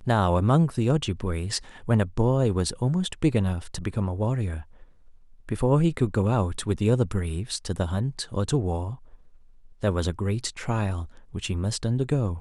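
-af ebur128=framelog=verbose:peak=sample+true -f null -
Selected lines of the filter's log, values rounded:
Integrated loudness:
  I:         -25.9 LUFS
  Threshold: -36.5 LUFS
Loudness range:
  LRA:         4.7 LU
  Threshold: -46.8 LUFS
  LRA low:   -29.3 LUFS
  LRA high:  -24.6 LUFS
Sample peak:
  Peak:       -8.3 dBFS
True peak:
  Peak:       -8.3 dBFS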